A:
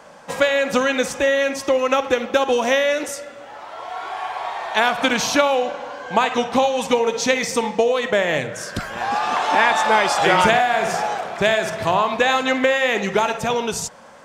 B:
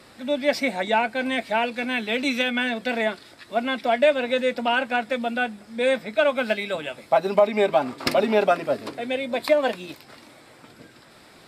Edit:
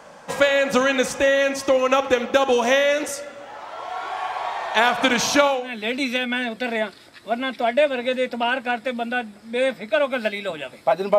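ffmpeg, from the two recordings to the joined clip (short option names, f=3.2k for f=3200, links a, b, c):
-filter_complex "[0:a]apad=whole_dur=11.18,atrim=end=11.18,atrim=end=5.81,asetpts=PTS-STARTPTS[a];[1:a]atrim=start=1.72:end=7.43,asetpts=PTS-STARTPTS[b];[a][b]acrossfade=d=0.34:c1=qua:c2=qua"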